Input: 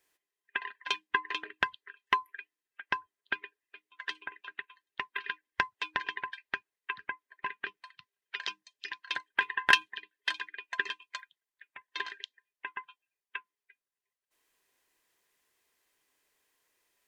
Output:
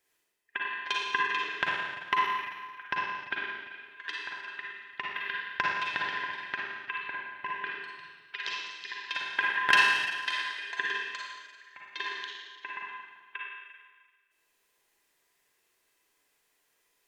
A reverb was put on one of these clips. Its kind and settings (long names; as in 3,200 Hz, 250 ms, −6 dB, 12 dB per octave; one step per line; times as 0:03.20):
four-comb reverb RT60 1.5 s, DRR −3.5 dB
level −2 dB